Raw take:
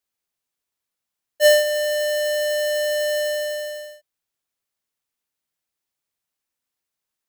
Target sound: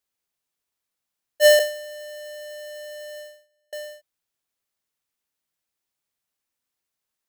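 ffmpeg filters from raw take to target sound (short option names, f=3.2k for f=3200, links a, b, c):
-filter_complex "[0:a]asettb=1/sr,asplit=3[a][b][c];[a]atrim=end=1.594[d];[b]atrim=start=1.59:end=3.73,asetpts=PTS-STARTPTS,afade=t=in:d=0.004:c=qsin,afade=t=out:st=2.136:d=0.004:c=qsin,agate=range=-44dB:threshold=-22dB:ratio=16:detection=peak[e];[c]atrim=start=3.726[f];[d][e]acrossfade=d=0.004:c1=hsin:c2=qsin[g];[g][f]acrossfade=d=0.004:c1=qsin:c2=hsin"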